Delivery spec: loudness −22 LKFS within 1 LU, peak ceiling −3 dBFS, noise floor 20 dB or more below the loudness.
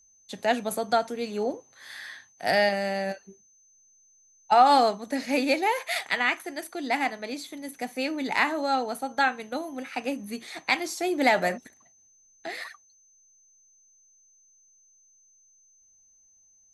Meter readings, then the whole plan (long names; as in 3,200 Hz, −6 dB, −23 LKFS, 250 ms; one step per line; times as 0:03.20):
interfering tone 6,200 Hz; level of the tone −58 dBFS; integrated loudness −26.5 LKFS; sample peak −8.0 dBFS; target loudness −22.0 LKFS
→ notch filter 6,200 Hz, Q 30
level +4.5 dB